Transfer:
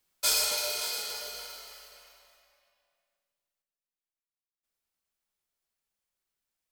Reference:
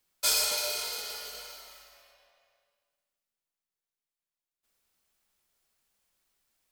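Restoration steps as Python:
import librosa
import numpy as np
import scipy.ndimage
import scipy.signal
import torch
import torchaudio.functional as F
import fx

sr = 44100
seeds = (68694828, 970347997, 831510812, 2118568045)

y = fx.fix_echo_inverse(x, sr, delay_ms=573, level_db=-12.5)
y = fx.gain(y, sr, db=fx.steps((0.0, 0.0), (3.62, 10.5)))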